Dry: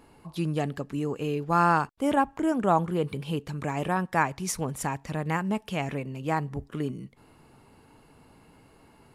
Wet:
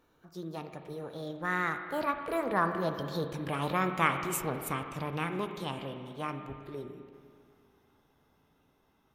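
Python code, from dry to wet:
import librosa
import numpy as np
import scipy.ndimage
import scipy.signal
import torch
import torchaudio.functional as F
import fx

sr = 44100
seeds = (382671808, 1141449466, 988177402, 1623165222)

y = fx.doppler_pass(x, sr, speed_mps=18, closest_m=23.0, pass_at_s=3.85)
y = fx.formant_shift(y, sr, semitones=5)
y = fx.rev_spring(y, sr, rt60_s=2.2, pass_ms=(36, 49), chirp_ms=50, drr_db=6.5)
y = F.gain(torch.from_numpy(y), -3.0).numpy()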